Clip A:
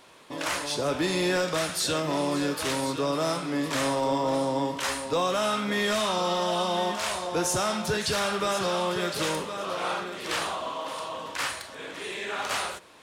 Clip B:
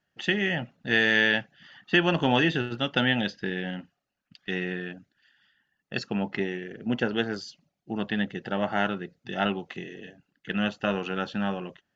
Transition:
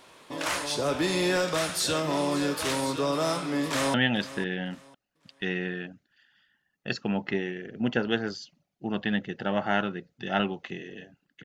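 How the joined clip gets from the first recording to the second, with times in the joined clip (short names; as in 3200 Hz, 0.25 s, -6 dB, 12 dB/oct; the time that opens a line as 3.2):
clip A
3.65–3.94 echo throw 0.5 s, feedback 25%, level -15 dB
3.94 switch to clip B from 3 s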